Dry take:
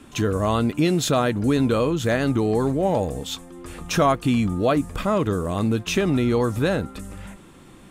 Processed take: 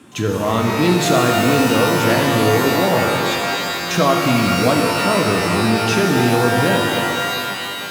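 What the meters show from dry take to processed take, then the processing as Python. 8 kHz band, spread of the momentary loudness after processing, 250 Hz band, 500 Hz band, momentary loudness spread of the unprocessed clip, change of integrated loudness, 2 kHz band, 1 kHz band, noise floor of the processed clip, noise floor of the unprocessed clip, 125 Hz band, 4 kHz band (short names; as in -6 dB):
+9.0 dB, 5 LU, +4.5 dB, +5.5 dB, 12 LU, +6.0 dB, +12.0 dB, +9.0 dB, -26 dBFS, -47 dBFS, +4.0 dB, +11.0 dB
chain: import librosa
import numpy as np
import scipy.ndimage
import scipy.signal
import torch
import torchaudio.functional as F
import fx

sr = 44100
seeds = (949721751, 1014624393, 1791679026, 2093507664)

y = scipy.signal.sosfilt(scipy.signal.butter(4, 98.0, 'highpass', fs=sr, output='sos'), x)
y = fx.rev_shimmer(y, sr, seeds[0], rt60_s=2.8, semitones=12, shimmer_db=-2, drr_db=1.5)
y = F.gain(torch.from_numpy(y), 1.5).numpy()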